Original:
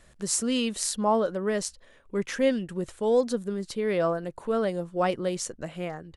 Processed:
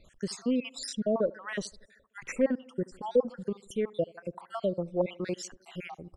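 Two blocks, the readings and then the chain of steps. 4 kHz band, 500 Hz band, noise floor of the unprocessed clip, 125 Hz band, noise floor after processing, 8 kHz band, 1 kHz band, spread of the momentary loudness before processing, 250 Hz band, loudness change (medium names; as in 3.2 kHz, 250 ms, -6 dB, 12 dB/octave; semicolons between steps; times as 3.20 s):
-7.5 dB, -4.5 dB, -56 dBFS, -4.0 dB, -64 dBFS, -13.0 dB, -10.5 dB, 10 LU, -3.5 dB, -4.5 dB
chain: random holes in the spectrogram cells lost 63%; tape echo 76 ms, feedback 70%, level -21.5 dB, low-pass 1 kHz; low-pass that closes with the level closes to 1.4 kHz, closed at -23 dBFS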